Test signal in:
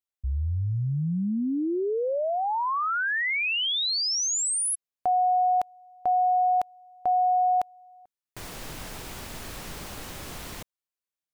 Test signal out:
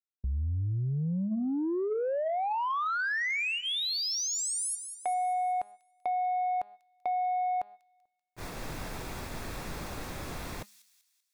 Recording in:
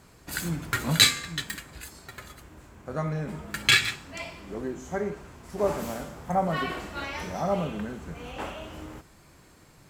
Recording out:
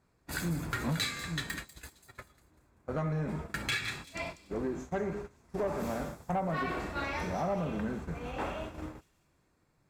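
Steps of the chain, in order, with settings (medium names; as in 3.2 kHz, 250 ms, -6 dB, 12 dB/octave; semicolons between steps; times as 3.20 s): band-stop 3 kHz, Q 9.2; de-hum 205.5 Hz, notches 22; gate -40 dBFS, range -18 dB; treble shelf 3.6 kHz -8.5 dB; compression 5:1, threshold -29 dBFS; saturation -26.5 dBFS; feedback echo behind a high-pass 193 ms, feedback 44%, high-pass 5.1 kHz, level -9 dB; trim +2 dB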